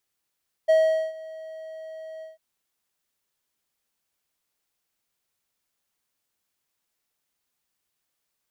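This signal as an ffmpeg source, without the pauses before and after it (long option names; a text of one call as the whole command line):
ffmpeg -f lavfi -i "aevalsrc='0.251*(1-4*abs(mod(638*t+0.25,1)-0.5))':duration=1.696:sample_rate=44100,afade=type=in:duration=0.018,afade=type=out:start_time=0.018:duration=0.428:silence=0.0794,afade=type=out:start_time=1.54:duration=0.156" out.wav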